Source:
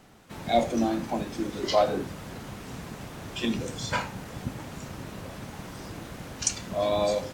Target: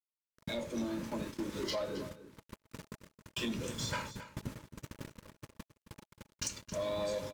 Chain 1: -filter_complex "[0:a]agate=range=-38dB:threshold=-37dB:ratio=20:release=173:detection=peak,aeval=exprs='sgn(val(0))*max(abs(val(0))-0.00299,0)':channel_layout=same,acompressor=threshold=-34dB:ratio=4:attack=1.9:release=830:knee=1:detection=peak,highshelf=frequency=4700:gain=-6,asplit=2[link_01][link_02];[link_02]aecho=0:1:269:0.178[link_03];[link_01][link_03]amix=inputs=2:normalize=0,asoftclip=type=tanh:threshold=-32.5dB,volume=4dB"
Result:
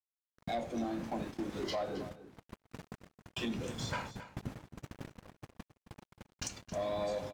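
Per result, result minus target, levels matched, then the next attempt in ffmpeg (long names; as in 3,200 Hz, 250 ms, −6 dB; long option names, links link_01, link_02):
8,000 Hz band −4.0 dB; 1,000 Hz band +4.0 dB
-filter_complex "[0:a]agate=range=-38dB:threshold=-37dB:ratio=20:release=173:detection=peak,aeval=exprs='sgn(val(0))*max(abs(val(0))-0.00299,0)':channel_layout=same,acompressor=threshold=-34dB:ratio=4:attack=1.9:release=830:knee=1:detection=peak,highshelf=frequency=4700:gain=2.5,asplit=2[link_01][link_02];[link_02]aecho=0:1:269:0.178[link_03];[link_01][link_03]amix=inputs=2:normalize=0,asoftclip=type=tanh:threshold=-32.5dB,volume=4dB"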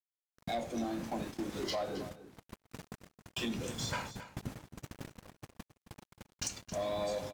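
1,000 Hz band +3.5 dB
-filter_complex "[0:a]agate=range=-38dB:threshold=-37dB:ratio=20:release=173:detection=peak,aeval=exprs='sgn(val(0))*max(abs(val(0))-0.00299,0)':channel_layout=same,acompressor=threshold=-34dB:ratio=4:attack=1.9:release=830:knee=1:detection=peak,asuperstop=centerf=740:order=8:qfactor=4.5,highshelf=frequency=4700:gain=2.5,asplit=2[link_01][link_02];[link_02]aecho=0:1:269:0.178[link_03];[link_01][link_03]amix=inputs=2:normalize=0,asoftclip=type=tanh:threshold=-32.5dB,volume=4dB"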